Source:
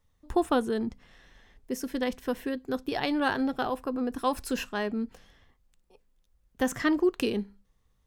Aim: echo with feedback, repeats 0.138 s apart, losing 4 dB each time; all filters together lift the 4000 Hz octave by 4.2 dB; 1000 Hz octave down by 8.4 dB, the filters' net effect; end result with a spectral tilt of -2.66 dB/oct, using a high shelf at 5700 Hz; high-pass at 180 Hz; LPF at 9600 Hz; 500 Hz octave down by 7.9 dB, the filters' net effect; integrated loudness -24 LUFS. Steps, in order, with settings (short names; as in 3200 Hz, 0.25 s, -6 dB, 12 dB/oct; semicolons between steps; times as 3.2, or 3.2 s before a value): HPF 180 Hz; LPF 9600 Hz; bell 500 Hz -8.5 dB; bell 1000 Hz -8.5 dB; bell 4000 Hz +3.5 dB; high shelf 5700 Hz +8 dB; feedback echo 0.138 s, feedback 63%, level -4 dB; gain +7.5 dB